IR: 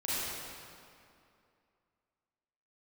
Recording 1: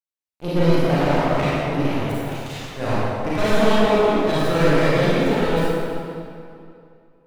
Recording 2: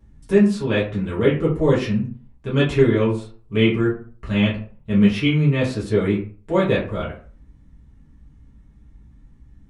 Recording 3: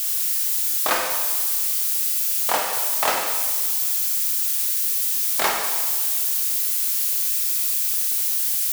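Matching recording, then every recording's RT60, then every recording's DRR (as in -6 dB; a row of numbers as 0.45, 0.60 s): 1; 2.5, 0.45, 1.5 s; -10.5, -8.0, 0.5 dB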